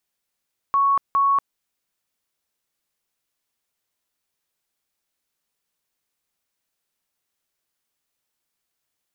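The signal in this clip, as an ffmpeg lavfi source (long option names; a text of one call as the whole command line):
ffmpeg -f lavfi -i "aevalsrc='0.178*sin(2*PI*1110*mod(t,0.41))*lt(mod(t,0.41),263/1110)':duration=0.82:sample_rate=44100" out.wav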